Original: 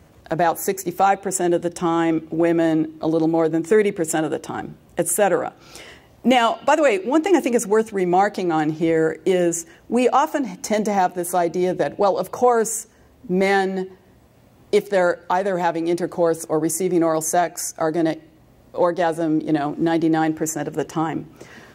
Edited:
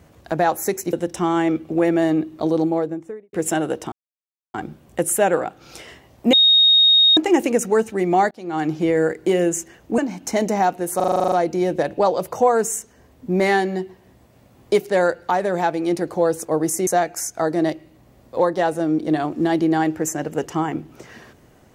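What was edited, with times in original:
0.93–1.55 s: delete
3.11–3.95 s: studio fade out
4.54 s: insert silence 0.62 s
6.33–7.17 s: bleep 3.73 kHz -10 dBFS
8.31–8.71 s: fade in
9.98–10.35 s: delete
11.33 s: stutter 0.04 s, 10 plays
16.88–17.28 s: delete

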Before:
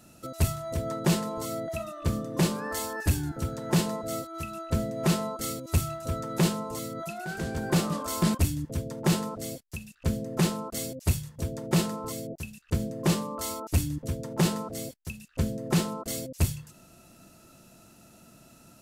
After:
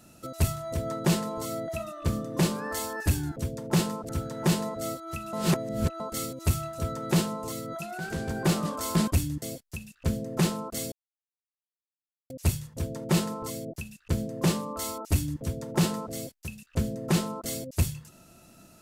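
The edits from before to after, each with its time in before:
4.60–5.27 s: reverse
8.69–9.42 s: move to 3.36 s
10.92 s: insert silence 1.38 s

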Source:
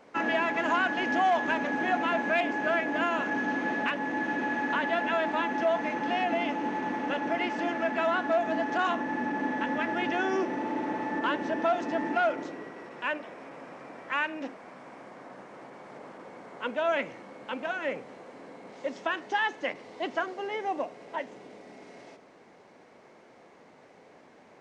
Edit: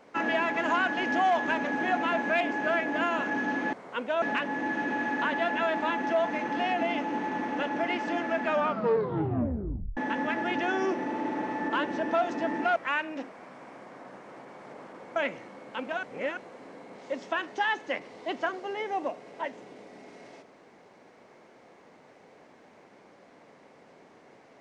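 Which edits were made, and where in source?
7.94 s: tape stop 1.54 s
12.27–14.01 s: delete
16.41–16.90 s: move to 3.73 s
17.77–18.11 s: reverse

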